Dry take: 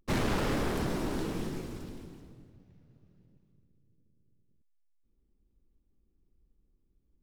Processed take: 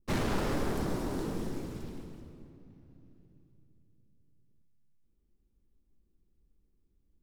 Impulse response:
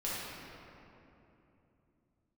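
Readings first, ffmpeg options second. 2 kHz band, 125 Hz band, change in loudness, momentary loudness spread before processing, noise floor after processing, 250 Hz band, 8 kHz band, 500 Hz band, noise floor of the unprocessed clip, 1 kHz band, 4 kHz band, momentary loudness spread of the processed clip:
-3.0 dB, -1.0 dB, -2.0 dB, 18 LU, -72 dBFS, -1.0 dB, -2.0 dB, -1.0 dB, -73 dBFS, -1.5 dB, -3.0 dB, 19 LU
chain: -filter_complex "[0:a]adynamicequalizer=threshold=0.00224:dfrequency=2600:dqfactor=1:tfrequency=2600:tqfactor=1:attack=5:release=100:ratio=0.375:range=3:mode=cutabove:tftype=bell,asplit=2[s0][s1];[1:a]atrim=start_sample=2205[s2];[s1][s2]afir=irnorm=-1:irlink=0,volume=0.211[s3];[s0][s3]amix=inputs=2:normalize=0,volume=0.75"

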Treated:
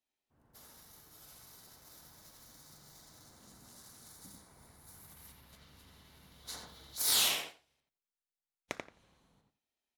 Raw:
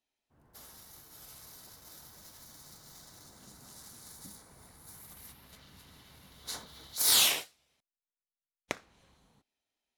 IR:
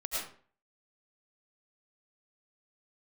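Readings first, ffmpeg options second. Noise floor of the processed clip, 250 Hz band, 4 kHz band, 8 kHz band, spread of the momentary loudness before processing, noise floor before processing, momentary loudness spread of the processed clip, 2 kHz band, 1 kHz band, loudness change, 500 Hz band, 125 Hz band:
under -85 dBFS, -3.0 dB, -4.0 dB, -4.5 dB, 22 LU, under -85 dBFS, 21 LU, -4.0 dB, -3.0 dB, -4.5 dB, -3.0 dB, -2.5 dB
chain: -filter_complex "[0:a]asplit=2[s0][s1];[s1]adelay=87,lowpass=f=3000:p=1,volume=0.708,asplit=2[s2][s3];[s3]adelay=87,lowpass=f=3000:p=1,volume=0.18,asplit=2[s4][s5];[s5]adelay=87,lowpass=f=3000:p=1,volume=0.18[s6];[s0][s2][s4][s6]amix=inputs=4:normalize=0,volume=0.562"

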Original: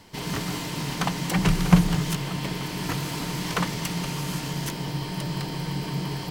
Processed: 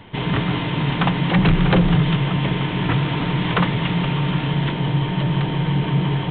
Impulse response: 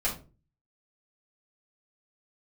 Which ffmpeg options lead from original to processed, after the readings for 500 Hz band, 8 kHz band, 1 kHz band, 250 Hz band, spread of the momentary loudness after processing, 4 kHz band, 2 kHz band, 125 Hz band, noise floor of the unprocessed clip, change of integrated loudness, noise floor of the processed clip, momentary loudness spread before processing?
+8.0 dB, under -40 dB, +7.0 dB, +6.5 dB, 5 LU, +5.0 dB, +7.5 dB, +8.5 dB, -34 dBFS, +7.0 dB, -25 dBFS, 10 LU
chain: -af "aresample=8000,aeval=exprs='0.75*sin(PI/2*4.47*val(0)/0.75)':c=same,aresample=44100,equalizer=f=120:t=o:w=0.48:g=6,volume=0.376"

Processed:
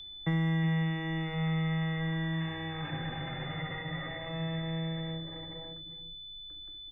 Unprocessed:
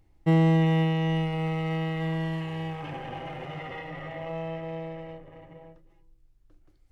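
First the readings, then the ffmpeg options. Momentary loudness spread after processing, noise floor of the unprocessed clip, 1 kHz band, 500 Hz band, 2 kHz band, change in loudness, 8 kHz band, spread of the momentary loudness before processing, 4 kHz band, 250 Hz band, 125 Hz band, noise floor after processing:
13 LU, -61 dBFS, -7.0 dB, -9.5 dB, -0.5 dB, -6.0 dB, no reading, 16 LU, +4.5 dB, -5.5 dB, -4.5 dB, -46 dBFS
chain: -filter_complex "[0:a]highshelf=f=2600:t=q:w=3:g=-12.5,aeval=exprs='val(0)+0.00794*sin(2*PI*3500*n/s)':c=same,acrossover=split=370|510[s0][s1][s2];[s0]aecho=1:1:61|369:0.596|0.668[s3];[s1]aeval=exprs='clip(val(0),-1,0.00668)':c=same[s4];[s3][s4][s2]amix=inputs=3:normalize=0,acrossover=split=260|1400|3100[s5][s6][s7][s8];[s5]acompressor=threshold=0.0316:ratio=4[s9];[s6]acompressor=threshold=0.00631:ratio=4[s10];[s7]acompressor=threshold=0.00708:ratio=4[s11];[s8]acompressor=threshold=0.00316:ratio=4[s12];[s9][s10][s11][s12]amix=inputs=4:normalize=0"

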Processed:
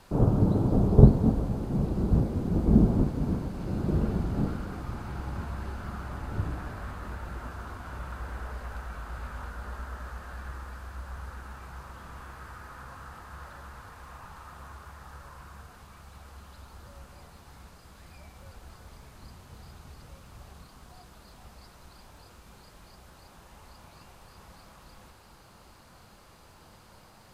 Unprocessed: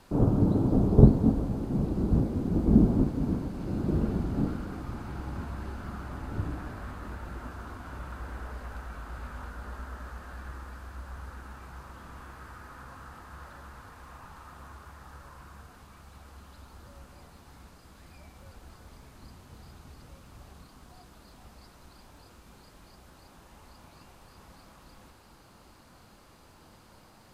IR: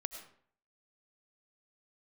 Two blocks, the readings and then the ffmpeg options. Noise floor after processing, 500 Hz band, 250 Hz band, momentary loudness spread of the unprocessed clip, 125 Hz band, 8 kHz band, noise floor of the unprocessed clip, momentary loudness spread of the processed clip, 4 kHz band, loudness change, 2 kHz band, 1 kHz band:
-54 dBFS, +0.5 dB, -1.0 dB, 23 LU, +1.5 dB, no reading, -56 dBFS, 23 LU, +2.0 dB, 0.0 dB, +2.0 dB, +2.0 dB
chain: -af "equalizer=f=280:t=o:w=0.66:g=-5.5,volume=1.26"

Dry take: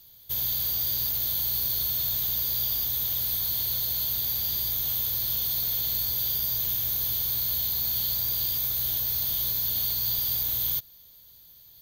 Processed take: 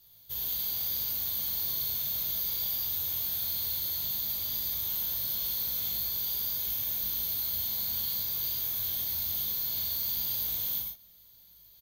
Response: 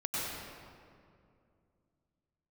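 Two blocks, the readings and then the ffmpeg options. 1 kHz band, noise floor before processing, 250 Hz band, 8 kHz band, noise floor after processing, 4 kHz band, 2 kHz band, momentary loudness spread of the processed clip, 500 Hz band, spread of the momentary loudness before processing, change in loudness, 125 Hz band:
-3.5 dB, -53 dBFS, -3.5 dB, -4.0 dB, -57 dBFS, -4.5 dB, -3.5 dB, 1 LU, -4.5 dB, 1 LU, -4.5 dB, -8.5 dB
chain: -filter_complex "[0:a]flanger=delay=19:depth=4.4:speed=0.17,asplit=2[s0][s1];[s1]adelay=37,volume=0.562[s2];[s0][s2]amix=inputs=2:normalize=0[s3];[1:a]atrim=start_sample=2205,atrim=end_sample=4410,asetrate=40572,aresample=44100[s4];[s3][s4]afir=irnorm=-1:irlink=0,volume=0.841"

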